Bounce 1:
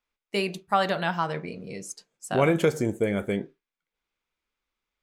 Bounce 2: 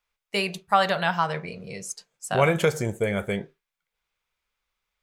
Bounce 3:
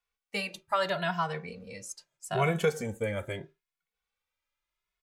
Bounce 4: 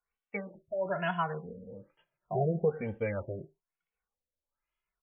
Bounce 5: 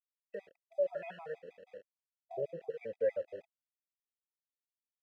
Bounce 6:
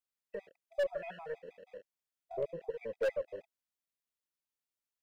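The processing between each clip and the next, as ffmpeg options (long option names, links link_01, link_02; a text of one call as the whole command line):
ffmpeg -i in.wav -af "equalizer=frequency=290:width_type=o:width=0.81:gain=-13,volume=4dB" out.wav
ffmpeg -i in.wav -filter_complex "[0:a]asplit=2[link_01][link_02];[link_02]adelay=2.3,afreqshift=0.78[link_03];[link_01][link_03]amix=inputs=2:normalize=1,volume=-3.5dB" out.wav
ffmpeg -i in.wav -af "afftfilt=real='re*lt(b*sr/1024,660*pow(3500/660,0.5+0.5*sin(2*PI*1.1*pts/sr)))':imag='im*lt(b*sr/1024,660*pow(3500/660,0.5+0.5*sin(2*PI*1.1*pts/sr)))':win_size=1024:overlap=0.75,volume=-1dB" out.wav
ffmpeg -i in.wav -filter_complex "[0:a]aeval=exprs='val(0)*gte(abs(val(0)),0.00562)':channel_layout=same,asplit=3[link_01][link_02][link_03];[link_01]bandpass=frequency=530:width_type=q:width=8,volume=0dB[link_04];[link_02]bandpass=frequency=1840:width_type=q:width=8,volume=-6dB[link_05];[link_03]bandpass=frequency=2480:width_type=q:width=8,volume=-9dB[link_06];[link_04][link_05][link_06]amix=inputs=3:normalize=0,afftfilt=real='re*gt(sin(2*PI*6.3*pts/sr)*(1-2*mod(floor(b*sr/1024/650),2)),0)':imag='im*gt(sin(2*PI*6.3*pts/sr)*(1-2*mod(floor(b*sr/1024/650),2)),0)':win_size=1024:overlap=0.75,volume=7dB" out.wav
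ffmpeg -i in.wav -af "aeval=exprs='0.0501*(abs(mod(val(0)/0.0501+3,4)-2)-1)':channel_layout=same,aeval=exprs='0.0501*(cos(1*acos(clip(val(0)/0.0501,-1,1)))-cos(1*PI/2))+0.002*(cos(4*acos(clip(val(0)/0.0501,-1,1)))-cos(4*PI/2))':channel_layout=same,volume=1dB" out.wav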